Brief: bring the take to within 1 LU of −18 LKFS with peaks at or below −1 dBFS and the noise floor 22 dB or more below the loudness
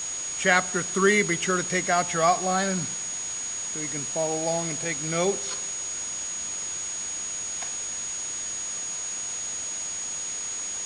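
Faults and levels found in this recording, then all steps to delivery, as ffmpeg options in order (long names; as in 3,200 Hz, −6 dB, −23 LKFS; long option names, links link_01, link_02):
interfering tone 6,700 Hz; level of the tone −30 dBFS; background noise floor −33 dBFS; target noise floor −48 dBFS; integrated loudness −26.0 LKFS; sample peak −5.5 dBFS; target loudness −18.0 LKFS
→ -af "bandreject=frequency=6700:width=30"
-af "afftdn=noise_reduction=15:noise_floor=-33"
-af "volume=8dB,alimiter=limit=-1dB:level=0:latency=1"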